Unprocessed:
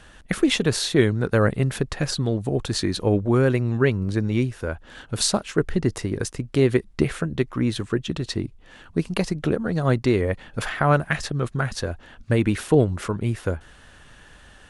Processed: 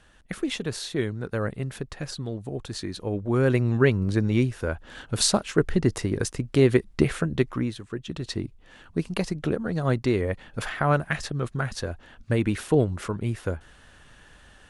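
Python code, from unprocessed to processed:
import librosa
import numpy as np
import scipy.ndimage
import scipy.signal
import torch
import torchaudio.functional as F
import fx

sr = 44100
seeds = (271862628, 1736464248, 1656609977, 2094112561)

y = fx.gain(x, sr, db=fx.line((3.12, -9.0), (3.56, 0.0), (7.53, 0.0), (7.8, -12.0), (8.29, -3.5)))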